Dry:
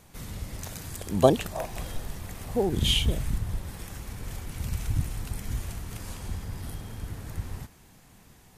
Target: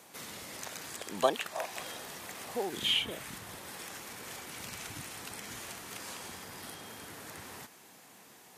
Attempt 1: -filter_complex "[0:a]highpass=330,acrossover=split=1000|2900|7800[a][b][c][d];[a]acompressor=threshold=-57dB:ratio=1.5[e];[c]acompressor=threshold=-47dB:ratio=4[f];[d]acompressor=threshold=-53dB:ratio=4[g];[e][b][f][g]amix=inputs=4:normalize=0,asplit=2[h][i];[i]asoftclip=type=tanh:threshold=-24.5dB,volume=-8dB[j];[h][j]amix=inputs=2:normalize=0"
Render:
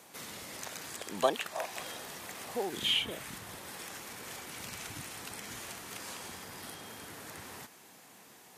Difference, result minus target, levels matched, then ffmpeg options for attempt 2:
soft clip: distortion +9 dB
-filter_complex "[0:a]highpass=330,acrossover=split=1000|2900|7800[a][b][c][d];[a]acompressor=threshold=-57dB:ratio=1.5[e];[c]acompressor=threshold=-47dB:ratio=4[f];[d]acompressor=threshold=-53dB:ratio=4[g];[e][b][f][g]amix=inputs=4:normalize=0,asplit=2[h][i];[i]asoftclip=type=tanh:threshold=-16.5dB,volume=-8dB[j];[h][j]amix=inputs=2:normalize=0"

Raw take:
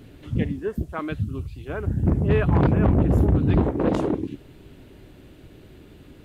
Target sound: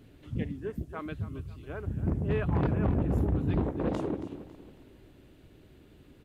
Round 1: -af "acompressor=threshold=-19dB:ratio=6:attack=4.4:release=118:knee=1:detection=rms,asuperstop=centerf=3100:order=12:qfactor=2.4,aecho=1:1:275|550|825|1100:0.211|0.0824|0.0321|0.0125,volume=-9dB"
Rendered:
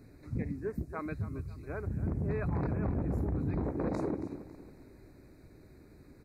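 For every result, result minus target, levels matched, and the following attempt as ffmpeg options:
4000 Hz band -7.5 dB; compressor: peak gain reduction +6.5 dB
-af "acompressor=threshold=-19dB:ratio=6:attack=4.4:release=118:knee=1:detection=rms,aecho=1:1:275|550|825|1100:0.211|0.0824|0.0321|0.0125,volume=-9dB"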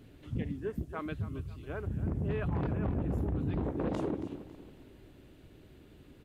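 compressor: peak gain reduction +6.5 dB
-af "aecho=1:1:275|550|825|1100:0.211|0.0824|0.0321|0.0125,volume=-9dB"

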